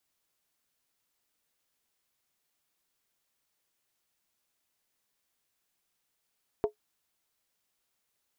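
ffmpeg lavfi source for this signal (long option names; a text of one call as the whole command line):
ffmpeg -f lavfi -i "aevalsrc='0.112*pow(10,-3*t/0.11)*sin(2*PI*423*t)+0.0447*pow(10,-3*t/0.087)*sin(2*PI*674.3*t)+0.0178*pow(10,-3*t/0.075)*sin(2*PI*903.5*t)+0.00708*pow(10,-3*t/0.073)*sin(2*PI*971.2*t)+0.00282*pow(10,-3*t/0.068)*sin(2*PI*1122.2*t)':duration=0.63:sample_rate=44100" out.wav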